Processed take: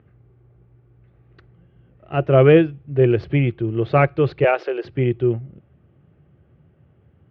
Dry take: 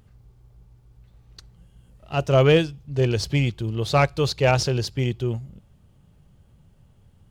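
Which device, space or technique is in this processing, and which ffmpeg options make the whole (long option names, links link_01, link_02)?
bass cabinet: -filter_complex "[0:a]asettb=1/sr,asplit=3[link_01][link_02][link_03];[link_01]atrim=end=4.444[link_04];[link_02]atrim=start=4.44:end=4.85,asetpts=PTS-STARTPTS,afade=type=in:duration=0.004:curve=qsin,afade=type=out:start_time=0.406:duration=0.004:curve=qsin,highpass=frequency=420:width=0.5412,highpass=frequency=420:width=1.3066[link_05];[link_03]atrim=start=4.846[link_06];[link_04][link_05]acrossfade=duration=0.004:curve1=hsin:curve2=qsin[link_07];[link_07][link_06]acrossfade=duration=0.004:curve1=qsin:curve2=hsin,highpass=frequency=77:width=0.5412,highpass=frequency=77:width=1.3066,equalizer=frequency=98:width_type=q:width=4:gain=-5,equalizer=frequency=200:width_type=q:width=4:gain=-5,equalizer=frequency=350:width_type=q:width=4:gain=7,equalizer=frequency=940:width_type=q:width=4:gain=-8,lowpass=frequency=2300:width=0.5412,lowpass=frequency=2300:width=1.3066,volume=4dB"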